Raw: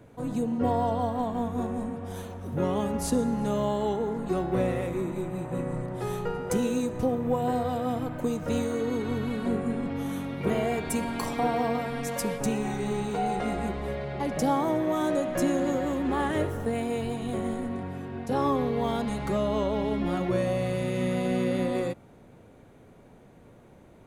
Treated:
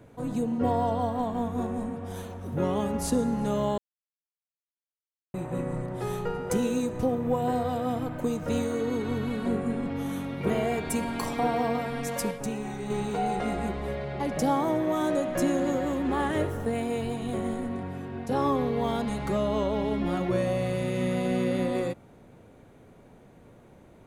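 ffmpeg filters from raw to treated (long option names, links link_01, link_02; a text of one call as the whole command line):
ffmpeg -i in.wav -filter_complex "[0:a]asplit=5[link_01][link_02][link_03][link_04][link_05];[link_01]atrim=end=3.78,asetpts=PTS-STARTPTS,afade=type=out:start_time=3.776:duration=0.004:curve=hsin[link_06];[link_02]atrim=start=3.78:end=5.34,asetpts=PTS-STARTPTS,volume=0[link_07];[link_03]atrim=start=5.34:end=12.312,asetpts=PTS-STARTPTS,afade=type=in:duration=0.004:curve=hsin[link_08];[link_04]atrim=start=12.308:end=12.902,asetpts=PTS-STARTPTS,volume=-4.5dB[link_09];[link_05]atrim=start=12.898[link_10];[link_06][link_07][link_08]concat=n=3:v=0:a=1[link_11];[link_11][link_09]acrossfade=duration=0.004:curve1=hsin:curve2=hsin[link_12];[link_12][link_10]acrossfade=duration=0.004:curve1=hsin:curve2=hsin" out.wav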